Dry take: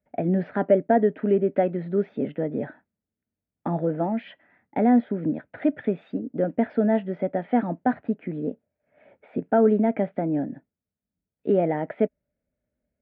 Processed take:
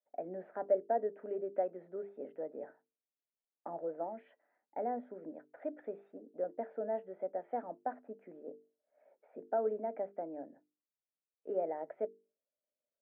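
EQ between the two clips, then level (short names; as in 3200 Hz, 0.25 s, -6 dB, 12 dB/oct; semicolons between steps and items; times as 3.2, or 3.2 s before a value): ladder band-pass 700 Hz, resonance 25%; notches 50/100/150/200/250/300/350/400/450 Hz; -1.5 dB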